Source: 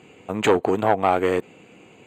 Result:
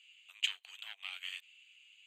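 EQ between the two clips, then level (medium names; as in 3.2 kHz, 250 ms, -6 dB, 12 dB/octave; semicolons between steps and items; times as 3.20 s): ladder high-pass 2.7 kHz, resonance 65%; -1.0 dB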